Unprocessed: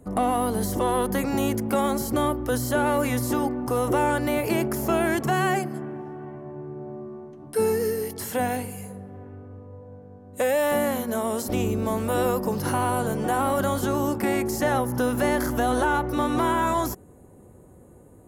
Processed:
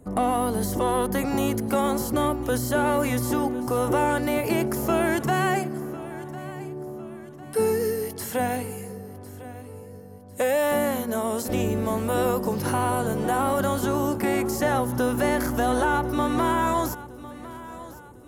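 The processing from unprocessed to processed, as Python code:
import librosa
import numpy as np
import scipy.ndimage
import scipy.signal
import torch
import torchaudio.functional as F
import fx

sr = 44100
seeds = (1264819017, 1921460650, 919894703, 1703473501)

y = fx.echo_feedback(x, sr, ms=1052, feedback_pct=42, wet_db=-17)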